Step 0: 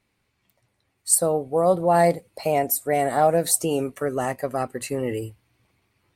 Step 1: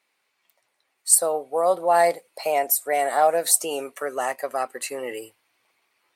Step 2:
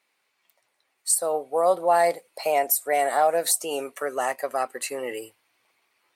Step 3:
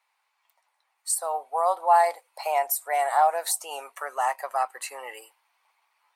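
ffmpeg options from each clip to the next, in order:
ffmpeg -i in.wav -af "highpass=610,volume=2.5dB" out.wav
ffmpeg -i in.wav -af "alimiter=limit=-10dB:level=0:latency=1:release=202" out.wav
ffmpeg -i in.wav -af "highpass=frequency=890:width_type=q:width=3.4,volume=-4.5dB" out.wav

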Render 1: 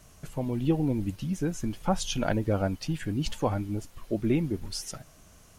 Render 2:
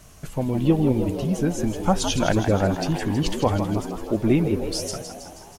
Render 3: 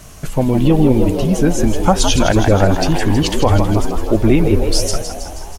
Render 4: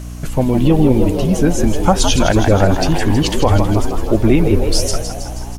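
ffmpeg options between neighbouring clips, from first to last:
ffmpeg -i in.wav -filter_complex "[0:a]asplit=9[link_01][link_02][link_03][link_04][link_05][link_06][link_07][link_08][link_09];[link_02]adelay=160,afreqshift=78,volume=-9dB[link_10];[link_03]adelay=320,afreqshift=156,volume=-13.2dB[link_11];[link_04]adelay=480,afreqshift=234,volume=-17.3dB[link_12];[link_05]adelay=640,afreqshift=312,volume=-21.5dB[link_13];[link_06]adelay=800,afreqshift=390,volume=-25.6dB[link_14];[link_07]adelay=960,afreqshift=468,volume=-29.8dB[link_15];[link_08]adelay=1120,afreqshift=546,volume=-33.9dB[link_16];[link_09]adelay=1280,afreqshift=624,volume=-38.1dB[link_17];[link_01][link_10][link_11][link_12][link_13][link_14][link_15][link_16][link_17]amix=inputs=9:normalize=0,volume=6dB" out.wav
ffmpeg -i in.wav -af "asubboost=boost=8.5:cutoff=55,afftfilt=real='re*lt(hypot(re,im),2)':imag='im*lt(hypot(re,im),2)':win_size=1024:overlap=0.75,alimiter=level_in=11dB:limit=-1dB:release=50:level=0:latency=1,volume=-1dB" out.wav
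ffmpeg -i in.wav -af "aeval=exprs='val(0)+0.0447*(sin(2*PI*60*n/s)+sin(2*PI*2*60*n/s)/2+sin(2*PI*3*60*n/s)/3+sin(2*PI*4*60*n/s)/4+sin(2*PI*5*60*n/s)/5)':channel_layout=same" out.wav

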